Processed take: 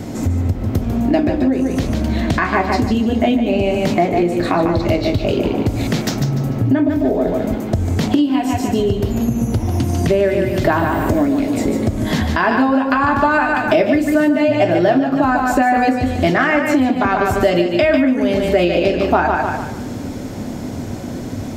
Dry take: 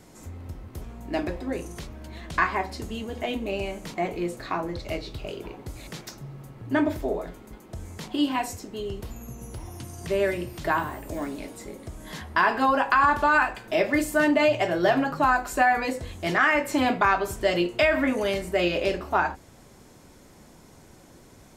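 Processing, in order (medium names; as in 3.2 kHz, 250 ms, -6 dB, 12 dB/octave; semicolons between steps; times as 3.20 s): fifteen-band graphic EQ 100 Hz +12 dB, 250 Hz +12 dB, 1 kHz -4 dB, 10 kHz -8 dB; on a send: thinning echo 147 ms, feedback 32%, high-pass 160 Hz, level -6 dB; on the sum: compression 10:1, threshold -31 dBFS, peak gain reduction 21.5 dB; peaking EQ 680 Hz +5.5 dB 0.94 oct; loudness maximiser +18.5 dB; trim -1 dB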